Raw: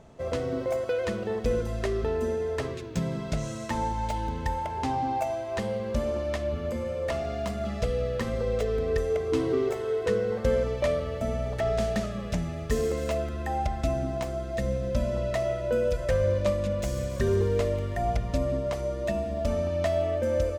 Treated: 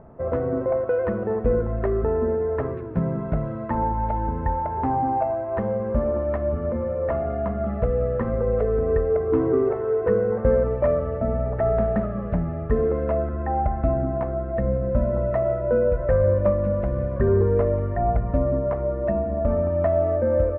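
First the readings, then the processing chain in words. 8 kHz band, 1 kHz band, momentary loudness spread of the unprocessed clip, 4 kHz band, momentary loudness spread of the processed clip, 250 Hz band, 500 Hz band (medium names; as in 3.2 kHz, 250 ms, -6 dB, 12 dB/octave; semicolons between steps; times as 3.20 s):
under -35 dB, +5.5 dB, 5 LU, under -20 dB, 5 LU, +5.5 dB, +5.5 dB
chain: low-pass 1.5 kHz 24 dB/octave; trim +5.5 dB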